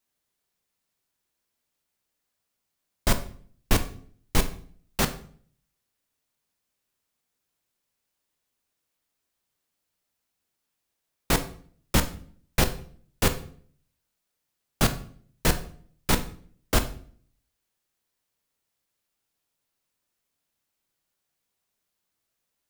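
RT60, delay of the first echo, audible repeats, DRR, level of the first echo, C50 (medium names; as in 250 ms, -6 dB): 0.50 s, no echo, no echo, 8.0 dB, no echo, 13.5 dB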